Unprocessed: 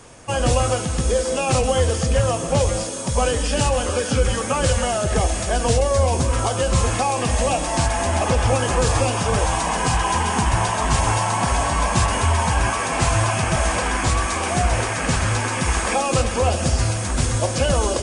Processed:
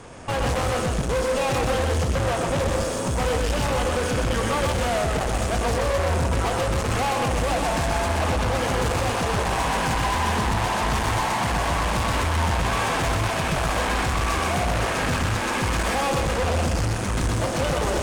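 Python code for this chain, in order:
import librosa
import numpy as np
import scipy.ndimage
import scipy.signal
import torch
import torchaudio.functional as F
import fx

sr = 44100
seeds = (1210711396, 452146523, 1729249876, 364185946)

p1 = fx.high_shelf(x, sr, hz=4200.0, db=-11.0)
p2 = fx.tube_stage(p1, sr, drive_db=30.0, bias=0.7)
p3 = p2 + fx.echo_single(p2, sr, ms=124, db=-4.0, dry=0)
y = F.gain(torch.from_numpy(p3), 7.5).numpy()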